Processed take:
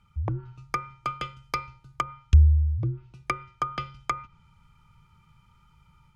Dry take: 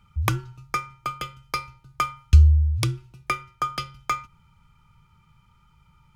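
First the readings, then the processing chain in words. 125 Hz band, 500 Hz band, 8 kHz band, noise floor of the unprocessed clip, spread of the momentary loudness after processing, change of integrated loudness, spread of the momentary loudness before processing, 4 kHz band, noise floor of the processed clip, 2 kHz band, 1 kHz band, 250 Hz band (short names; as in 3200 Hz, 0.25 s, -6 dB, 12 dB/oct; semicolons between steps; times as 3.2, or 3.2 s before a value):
-3.0 dB, -2.0 dB, -10.0 dB, -60 dBFS, 15 LU, -3.0 dB, 15 LU, -7.5 dB, -62 dBFS, -5.0 dB, -3.0 dB, -3.0 dB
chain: treble ducked by the level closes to 440 Hz, closed at -19.5 dBFS; AGC gain up to 4 dB; gain -4.5 dB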